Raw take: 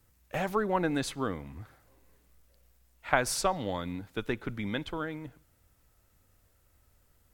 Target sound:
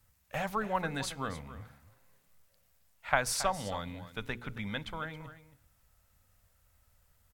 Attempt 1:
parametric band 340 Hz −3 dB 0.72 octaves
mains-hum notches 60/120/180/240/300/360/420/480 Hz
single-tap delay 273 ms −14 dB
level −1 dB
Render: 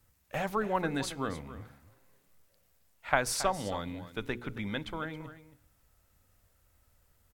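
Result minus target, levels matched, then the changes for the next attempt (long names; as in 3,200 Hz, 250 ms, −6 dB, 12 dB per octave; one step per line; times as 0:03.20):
250 Hz band +3.0 dB
change: parametric band 340 Hz −13 dB 0.72 octaves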